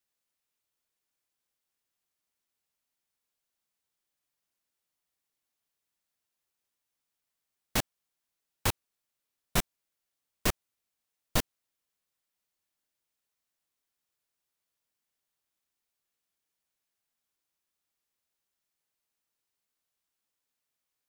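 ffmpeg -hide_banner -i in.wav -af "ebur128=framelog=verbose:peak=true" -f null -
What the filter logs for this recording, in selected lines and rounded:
Integrated loudness:
  I:         -32.9 LUFS
  Threshold: -43.8 LUFS
Loudness range:
  LRA:         6.2 LU
  Threshold: -58.1 LUFS
  LRA low:   -41.7 LUFS
  LRA high:  -35.5 LUFS
True peak:
  Peak:      -12.0 dBFS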